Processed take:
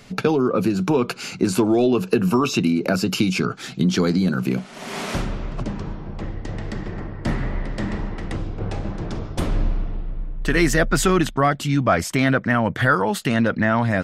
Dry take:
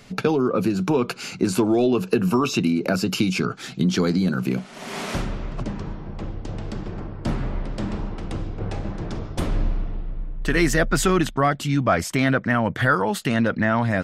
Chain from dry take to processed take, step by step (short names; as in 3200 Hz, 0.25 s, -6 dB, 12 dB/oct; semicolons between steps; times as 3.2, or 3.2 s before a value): 6.21–8.36 bell 1900 Hz +11.5 dB 0.24 oct; gain +1.5 dB